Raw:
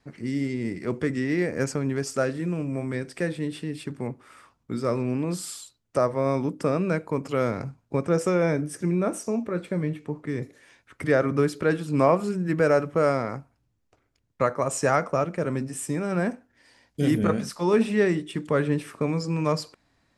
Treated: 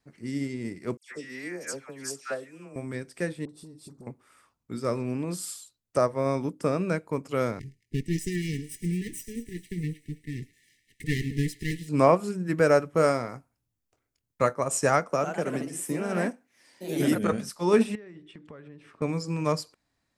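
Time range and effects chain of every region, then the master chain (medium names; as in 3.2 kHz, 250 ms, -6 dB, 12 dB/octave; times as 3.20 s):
0.97–2.76 s: high-pass 690 Hz 6 dB/octave + phase dispersion lows, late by 144 ms, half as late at 1.6 kHz
3.45–4.07 s: high-order bell 2.2 kHz -16 dB 1.3 oct + compression 12:1, threshold -32 dBFS + phase dispersion highs, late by 41 ms, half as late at 980 Hz
7.59–11.89 s: comb filter that takes the minimum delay 1 ms + brick-wall FIR band-stop 480–1700 Hz + feedback echo behind a high-pass 107 ms, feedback 78%, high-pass 1.8 kHz, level -14 dB
12.94–14.55 s: treble shelf 6.4 kHz +5 dB + doubling 25 ms -13 dB
15.10–17.32 s: high-pass 160 Hz + ever faster or slower copies 105 ms, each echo +2 st, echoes 2, each echo -6 dB + three bands compressed up and down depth 40%
17.95–19.02 s: compression 10:1, threshold -33 dBFS + low-pass 3.3 kHz
whole clip: treble shelf 6.7 kHz +10 dB; upward expansion 1.5:1, over -39 dBFS; trim +1 dB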